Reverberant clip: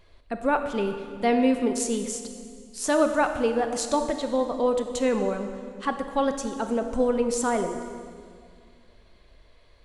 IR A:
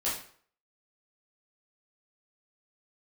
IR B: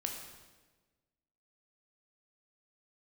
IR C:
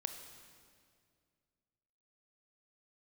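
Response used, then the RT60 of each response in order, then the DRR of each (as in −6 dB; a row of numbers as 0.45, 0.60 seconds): C; 0.50, 1.3, 2.2 seconds; −8.5, 1.5, 6.5 decibels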